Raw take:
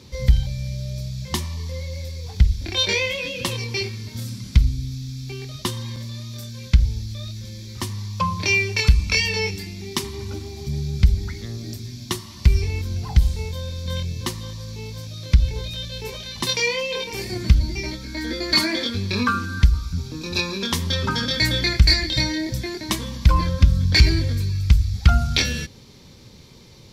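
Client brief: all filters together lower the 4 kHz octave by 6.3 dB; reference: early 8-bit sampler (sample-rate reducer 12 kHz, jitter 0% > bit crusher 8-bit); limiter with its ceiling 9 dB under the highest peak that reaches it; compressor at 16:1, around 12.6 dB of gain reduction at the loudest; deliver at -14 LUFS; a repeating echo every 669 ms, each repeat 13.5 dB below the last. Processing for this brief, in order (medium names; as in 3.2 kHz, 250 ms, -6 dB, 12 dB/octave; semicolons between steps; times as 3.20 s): peaking EQ 4 kHz -7.5 dB; compression 16:1, threshold -20 dBFS; peak limiter -18.5 dBFS; feedback delay 669 ms, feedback 21%, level -13.5 dB; sample-rate reducer 12 kHz, jitter 0%; bit crusher 8-bit; trim +15.5 dB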